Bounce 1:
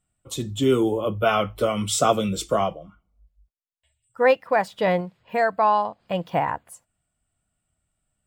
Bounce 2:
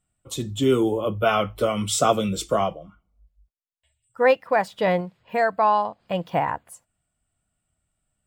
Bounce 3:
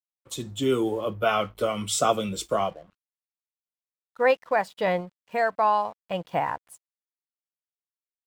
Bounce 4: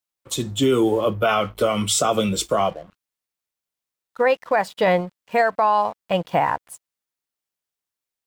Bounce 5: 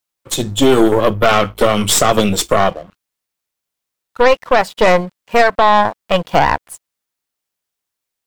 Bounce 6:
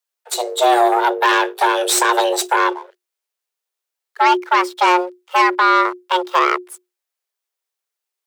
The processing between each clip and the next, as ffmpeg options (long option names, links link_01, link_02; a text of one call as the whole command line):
ffmpeg -i in.wav -af anull out.wav
ffmpeg -i in.wav -af "lowshelf=frequency=290:gain=-5,aeval=exprs='sgn(val(0))*max(abs(val(0))-0.00251,0)':channel_layout=same,volume=-2dB" out.wav
ffmpeg -i in.wav -af "alimiter=limit=-18dB:level=0:latency=1:release=78,volume=8.5dB" out.wav
ffmpeg -i in.wav -af "aeval=exprs='0.355*(cos(1*acos(clip(val(0)/0.355,-1,1)))-cos(1*PI/2))+0.0708*(cos(4*acos(clip(val(0)/0.355,-1,1)))-cos(4*PI/2))':channel_layout=same,volume=6.5dB" out.wav
ffmpeg -i in.wav -af "afreqshift=360,volume=-3dB" out.wav